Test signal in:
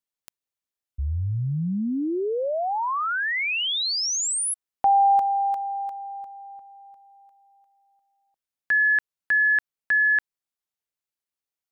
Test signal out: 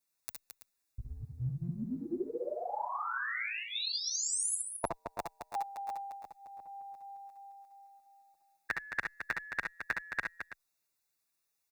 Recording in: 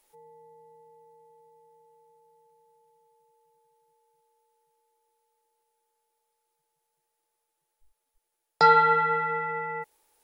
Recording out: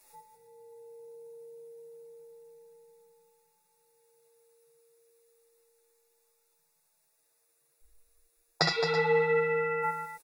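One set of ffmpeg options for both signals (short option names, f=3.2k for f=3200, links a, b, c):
-filter_complex "[0:a]highshelf=f=3.2k:g=5,afftfilt=real='re*lt(hypot(re,im),0.398)':imag='im*lt(hypot(re,im),0.398)':win_size=1024:overlap=0.75,asuperstop=centerf=3100:order=8:qfactor=5.4,asplit=2[a][b];[b]aecho=0:1:65|66|71|218|330:0.501|0.119|0.355|0.398|0.2[c];[a][c]amix=inputs=2:normalize=0,asplit=2[d][e];[e]adelay=7.6,afreqshift=0.3[f];[d][f]amix=inputs=2:normalize=1,volume=6dB"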